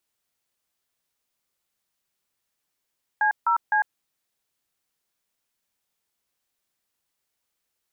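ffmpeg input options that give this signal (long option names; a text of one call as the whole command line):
ffmpeg -f lavfi -i "aevalsrc='0.0944*clip(min(mod(t,0.255),0.101-mod(t,0.255))/0.002,0,1)*(eq(floor(t/0.255),0)*(sin(2*PI*852*mod(t,0.255))+sin(2*PI*1633*mod(t,0.255)))+eq(floor(t/0.255),1)*(sin(2*PI*941*mod(t,0.255))+sin(2*PI*1336*mod(t,0.255)))+eq(floor(t/0.255),2)*(sin(2*PI*852*mod(t,0.255))+sin(2*PI*1633*mod(t,0.255))))':duration=0.765:sample_rate=44100" out.wav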